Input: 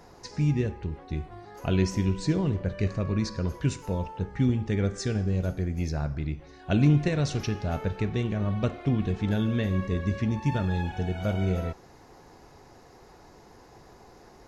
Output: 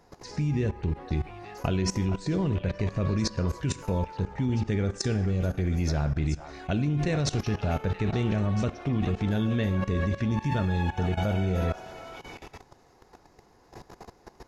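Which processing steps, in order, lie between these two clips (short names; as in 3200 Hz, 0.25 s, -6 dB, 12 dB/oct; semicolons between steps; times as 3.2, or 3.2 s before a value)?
delay with a stepping band-pass 0.438 s, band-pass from 980 Hz, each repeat 1.4 oct, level -6 dB; level quantiser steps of 17 dB; gain +8.5 dB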